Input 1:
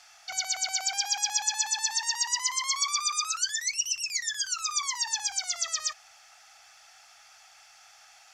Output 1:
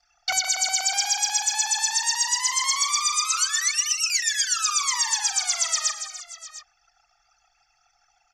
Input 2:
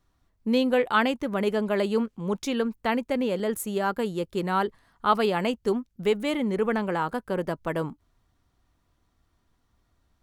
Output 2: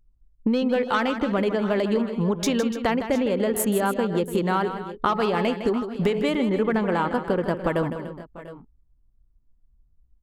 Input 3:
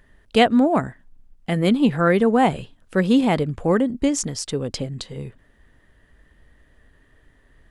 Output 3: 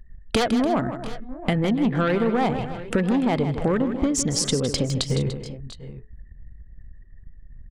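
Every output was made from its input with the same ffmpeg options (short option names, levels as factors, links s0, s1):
-filter_complex "[0:a]bandreject=f=427.1:t=h:w=4,bandreject=f=854.2:t=h:w=4,bandreject=f=1281.3:t=h:w=4,bandreject=f=1708.4:t=h:w=4,bandreject=f=2135.5:t=h:w=4,bandreject=f=2562.6:t=h:w=4,bandreject=f=2989.7:t=h:w=4,bandreject=f=3416.8:t=h:w=4,bandreject=f=3843.9:t=h:w=4,bandreject=f=4271:t=h:w=4,bandreject=f=4698.1:t=h:w=4,bandreject=f=5125.2:t=h:w=4,bandreject=f=5552.3:t=h:w=4,bandreject=f=5979.4:t=h:w=4,bandreject=f=6406.5:t=h:w=4,bandreject=f=6833.6:t=h:w=4,aeval=exprs='0.891*sin(PI/2*3.16*val(0)/0.891)':c=same,acompressor=threshold=0.1:ratio=10,anlmdn=15.8,asplit=2[s0][s1];[s1]aecho=0:1:158|292|693|716:0.316|0.188|0.106|0.126[s2];[s0][s2]amix=inputs=2:normalize=0"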